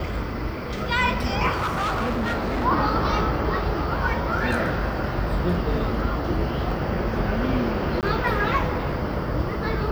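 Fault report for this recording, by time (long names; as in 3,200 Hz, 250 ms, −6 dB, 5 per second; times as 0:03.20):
0:01.51–0:02.66: clipping −21.5 dBFS
0:08.01–0:08.03: drop-out 18 ms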